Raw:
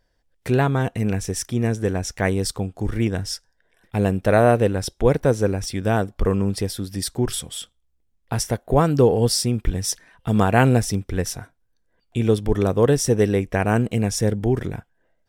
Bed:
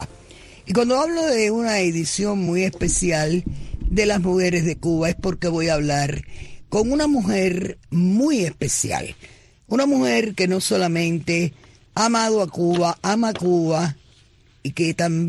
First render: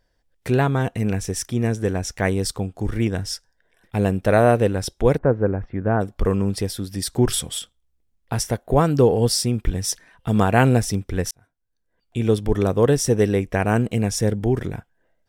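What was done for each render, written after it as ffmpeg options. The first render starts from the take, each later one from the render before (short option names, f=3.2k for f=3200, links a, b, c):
-filter_complex "[0:a]asplit=3[a][b][c];[a]afade=t=out:st=5.17:d=0.02[d];[b]lowpass=f=1.7k:w=0.5412,lowpass=f=1.7k:w=1.3066,afade=t=in:st=5.17:d=0.02,afade=t=out:st=6:d=0.02[e];[c]afade=t=in:st=6:d=0.02[f];[d][e][f]amix=inputs=3:normalize=0,asplit=4[g][h][i][j];[g]atrim=end=7.132[k];[h]atrim=start=7.128:end=7.592,asetpts=PTS-STARTPTS,volume=4dB[l];[i]atrim=start=7.588:end=11.31,asetpts=PTS-STARTPTS,afade=t=out:st=3.718:d=0.004:c=hsin[m];[j]atrim=start=11.31,asetpts=PTS-STARTPTS,afade=t=in:d=1.04[n];[k][l]acrossfade=d=0.004:c1=hsin:c2=hsin[o];[m][n]concat=n=2:v=0:a=1[p];[o][p]acrossfade=d=0.004:c1=hsin:c2=hsin"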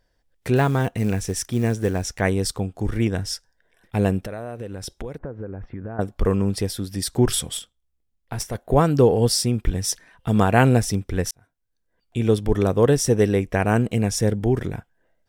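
-filter_complex "[0:a]asettb=1/sr,asplit=3[a][b][c];[a]atrim=end=0.564[d];[b]atrim=start=0.56:end=2.09,asetpts=PTS-STARTPTS,afade=t=in:d=0.004:c=qsin,afade=t=out:st=1.526:d=0.004:c=qsin,acrusher=bits=7:mode=log:mix=0:aa=0.000001[e];[c]atrim=start=2.086[f];[d][e]acrossfade=d=0.004:c1=hsin:c2=qsin[g];[g][f]acrossfade=d=0.004:c1=qsin:c2=hsin,asettb=1/sr,asplit=3[h][i][j];[h]atrim=end=4.214[k];[i]atrim=start=4.21:end=5.99,asetpts=PTS-STARTPTS,afade=t=in:d=0.004:c=qsin,afade=t=out:st=1.776:d=0.004:c=qsin,acompressor=threshold=-28dB:ratio=10:attack=3.2:release=140:knee=1:detection=peak[l];[j]atrim=start=5.986[m];[k][l]acrossfade=d=0.004:c1=hsin:c2=qsin[n];[n][m]acrossfade=d=0.004:c1=qsin:c2=hsin,asettb=1/sr,asplit=3[o][p][q];[o]atrim=end=7.574[r];[p]atrim=start=7.57:end=8.55,asetpts=PTS-STARTPTS,afade=t=in:d=0.004:c=qsin,afade=t=out:st=0.976:d=0.004:c=qsin,aeval=exprs='(tanh(3.55*val(0)+0.8)-tanh(0.8))/3.55':c=same[s];[q]atrim=start=8.546[t];[r][s]acrossfade=d=0.004:c1=hsin:c2=qsin[u];[u][t]acrossfade=d=0.004:c1=qsin:c2=hsin"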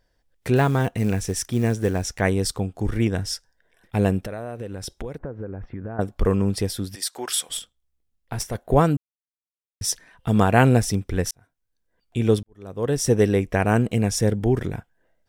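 -filter_complex "[0:a]asplit=3[a][b][c];[a]afade=t=out:st=6.94:d=0.02[d];[b]highpass=760,afade=t=in:st=6.94:d=0.02,afade=t=out:st=7.49:d=0.02[e];[c]afade=t=in:st=7.49:d=0.02[f];[d][e][f]amix=inputs=3:normalize=0,asplit=4[g][h][i][j];[g]atrim=end=8.97,asetpts=PTS-STARTPTS,afade=t=out:st=8.966:d=0.004:c=hsin[k];[h]atrim=start=8.97:end=9.81,asetpts=PTS-STARTPTS,volume=0[l];[i]atrim=start=9.81:end=12.43,asetpts=PTS-STARTPTS,afade=t=in:d=0.004:c=hsin,afade=t=out:st=2.616:d=0.004:c=hsin[m];[j]atrim=start=12.43,asetpts=PTS-STARTPTS,afade=t=in:d=0.66:c=qua[n];[k][l][m][n]concat=n=4:v=0:a=1"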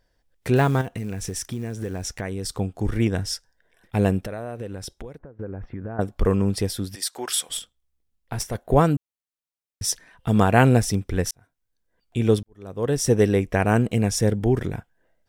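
-filter_complex "[0:a]asettb=1/sr,asplit=3[a][b][c];[a]atrim=end=0.814[d];[b]atrim=start=0.81:end=2.52,asetpts=PTS-STARTPTS,afade=t=in:d=0.004:c=qsin,afade=t=out:st=1.706:d=0.004:c=qsin,acompressor=threshold=-25dB:ratio=6:attack=3.2:release=140:knee=1:detection=peak[e];[c]atrim=start=2.516[f];[d][e]acrossfade=d=0.004:c1=hsin:c2=qsin[g];[g][f]acrossfade=d=0.004:c1=qsin:c2=hsin,asplit=2[h][i];[h]atrim=end=5.39,asetpts=PTS-STARTPTS,afade=t=out:st=4.69:d=0.7:silence=0.149624[j];[i]atrim=start=5.39,asetpts=PTS-STARTPTS,afade=t=in:d=0.004:c=hsin:silence=0.149624[k];[j][k]concat=n=2:v=0:a=1"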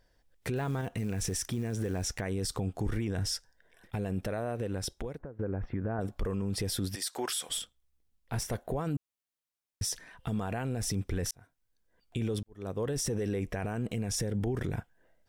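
-af "acompressor=threshold=-20dB:ratio=6,alimiter=limit=-24dB:level=0:latency=1:release=23"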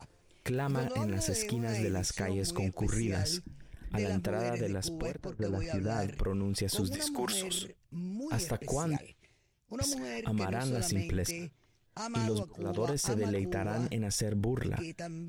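-filter_complex "[1:a]volume=-20.5dB[a];[0:a][a]amix=inputs=2:normalize=0"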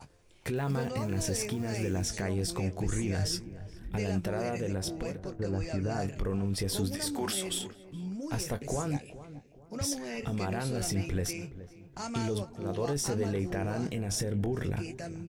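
-filter_complex "[0:a]asplit=2[a][b];[b]adelay=21,volume=-10.5dB[c];[a][c]amix=inputs=2:normalize=0,asplit=2[d][e];[e]adelay=421,lowpass=f=1.1k:p=1,volume=-14dB,asplit=2[f][g];[g]adelay=421,lowpass=f=1.1k:p=1,volume=0.39,asplit=2[h][i];[i]adelay=421,lowpass=f=1.1k:p=1,volume=0.39,asplit=2[j][k];[k]adelay=421,lowpass=f=1.1k:p=1,volume=0.39[l];[d][f][h][j][l]amix=inputs=5:normalize=0"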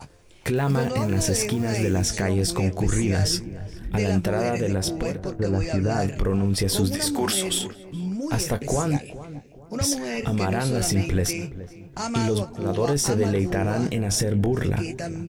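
-af "volume=9dB"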